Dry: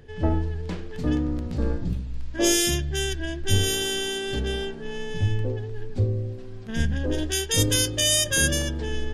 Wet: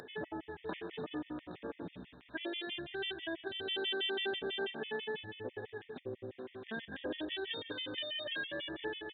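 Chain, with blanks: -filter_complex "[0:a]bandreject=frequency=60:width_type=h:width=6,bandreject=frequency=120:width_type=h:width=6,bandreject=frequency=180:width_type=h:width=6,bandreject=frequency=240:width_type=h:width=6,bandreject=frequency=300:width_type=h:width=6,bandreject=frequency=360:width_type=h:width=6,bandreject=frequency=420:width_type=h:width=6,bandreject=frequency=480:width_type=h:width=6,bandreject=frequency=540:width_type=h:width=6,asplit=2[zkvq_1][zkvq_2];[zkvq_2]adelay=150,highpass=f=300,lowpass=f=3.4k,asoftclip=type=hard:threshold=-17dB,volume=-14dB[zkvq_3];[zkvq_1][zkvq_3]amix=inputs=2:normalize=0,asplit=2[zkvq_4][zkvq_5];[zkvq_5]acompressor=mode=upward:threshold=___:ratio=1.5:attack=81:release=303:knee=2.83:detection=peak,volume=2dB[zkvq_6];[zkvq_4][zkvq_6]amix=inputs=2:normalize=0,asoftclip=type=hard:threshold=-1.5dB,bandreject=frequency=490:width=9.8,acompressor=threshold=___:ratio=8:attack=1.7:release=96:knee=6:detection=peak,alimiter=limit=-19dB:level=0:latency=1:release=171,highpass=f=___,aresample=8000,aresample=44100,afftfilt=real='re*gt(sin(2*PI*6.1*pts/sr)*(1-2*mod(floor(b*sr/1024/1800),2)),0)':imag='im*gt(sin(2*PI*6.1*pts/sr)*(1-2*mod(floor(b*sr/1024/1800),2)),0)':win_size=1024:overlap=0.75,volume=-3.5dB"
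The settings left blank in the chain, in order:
-38dB, -16dB, 370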